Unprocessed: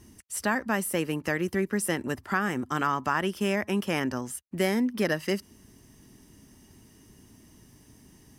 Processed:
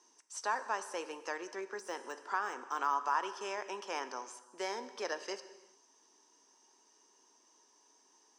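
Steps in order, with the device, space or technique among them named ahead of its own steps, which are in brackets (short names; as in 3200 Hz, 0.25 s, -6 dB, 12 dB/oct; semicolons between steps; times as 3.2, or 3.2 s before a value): phone speaker on a table (speaker cabinet 440–6900 Hz, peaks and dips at 610 Hz -5 dB, 960 Hz +8 dB, 2000 Hz -9 dB, 2900 Hz -5 dB, 6100 Hz +7 dB); low shelf 140 Hz -4 dB; non-linear reverb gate 0.44 s falling, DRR 10.5 dB; 1.72–3.13 de-esser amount 100%; gain -6.5 dB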